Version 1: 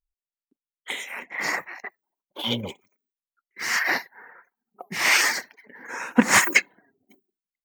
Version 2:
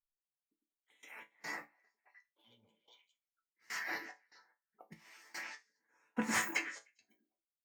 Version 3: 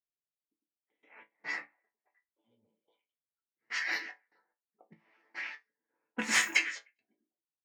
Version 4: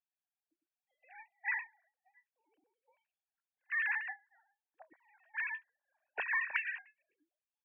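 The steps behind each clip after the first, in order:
echo through a band-pass that steps 101 ms, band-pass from 280 Hz, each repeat 1.4 octaves, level −4 dB; gate pattern "x.xx.x.x..x...xx" 73 BPM −24 dB; resonators tuned to a chord A2 sus4, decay 0.2 s; level −5.5 dB
low-pass that shuts in the quiet parts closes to 520 Hz, open at −35 dBFS; meter weighting curve D
three sine waves on the formant tracks; comb filter 1.2 ms, depth 65%; downward compressor 6 to 1, threshold −31 dBFS, peak gain reduction 9.5 dB

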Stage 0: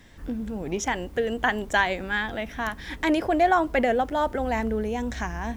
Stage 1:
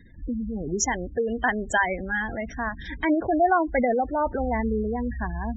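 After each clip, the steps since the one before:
gate on every frequency bin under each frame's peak −15 dB strong
bass and treble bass +3 dB, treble +10 dB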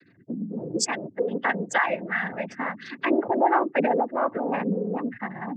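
high-pass filter 150 Hz
cochlear-implant simulation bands 16

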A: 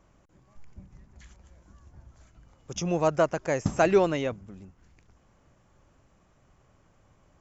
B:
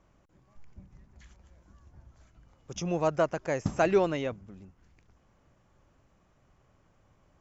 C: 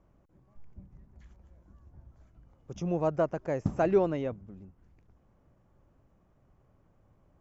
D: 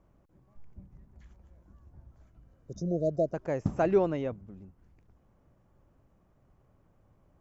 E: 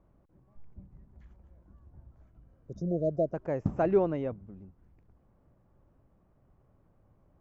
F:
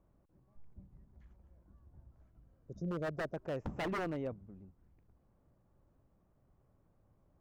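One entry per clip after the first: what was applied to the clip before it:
low-pass filter 6,800 Hz 12 dB per octave; level −3 dB
tilt shelving filter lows +7 dB, about 1,400 Hz; level −6 dB
healed spectral selection 0:02.45–0:03.32, 710–3,600 Hz before
low-pass filter 1,600 Hz 6 dB per octave
wave folding −25.5 dBFS; level −5.5 dB

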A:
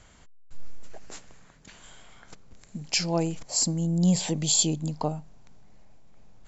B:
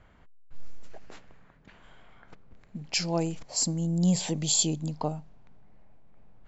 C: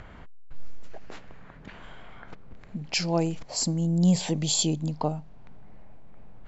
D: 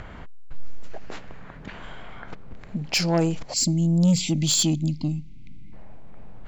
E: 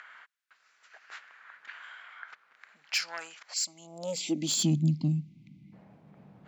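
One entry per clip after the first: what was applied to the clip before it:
low-pass that shuts in the quiet parts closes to 2,000 Hz, open at −21 dBFS; level −2 dB
in parallel at −2 dB: upward compression, threshold −30 dBFS; on the sum: high-frequency loss of the air 57 metres; level −2 dB
gain on a spectral selection 0:03.54–0:05.73, 360–2,000 Hz −28 dB; soft clipping −20 dBFS, distortion −15 dB; level +6 dB
high-pass filter sweep 1,500 Hz → 160 Hz, 0:03.59–0:04.74; level −7.5 dB

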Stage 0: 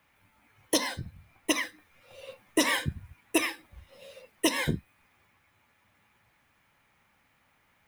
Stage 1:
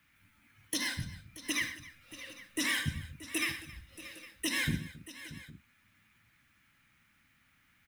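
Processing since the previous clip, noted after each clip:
brickwall limiter −20.5 dBFS, peak gain reduction 8.5 dB
flat-topped bell 630 Hz −13 dB
on a send: multi-tap delay 75/112/124/271/630/809 ms −13.5/−16.5/−16.5/−19/−15.5/−19.5 dB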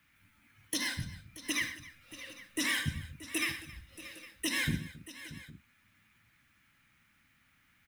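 no processing that can be heard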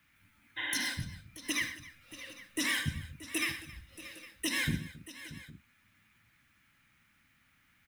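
healed spectral selection 0:00.60–0:00.84, 300–3,900 Hz after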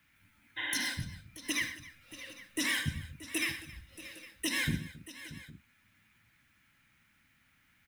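notch filter 1,200 Hz, Q 17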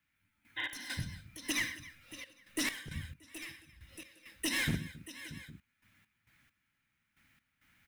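wavefolder on the positive side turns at −27.5 dBFS
gate pattern "..x.xxxxxx.x.x." 67 BPM −12 dB

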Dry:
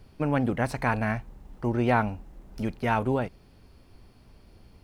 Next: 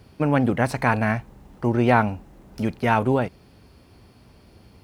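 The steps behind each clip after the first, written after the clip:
high-pass filter 68 Hz 12 dB per octave
level +5.5 dB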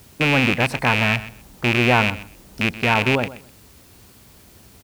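loose part that buzzes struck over −23 dBFS, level −7 dBFS
background noise white −52 dBFS
repeating echo 127 ms, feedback 18%, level −16 dB

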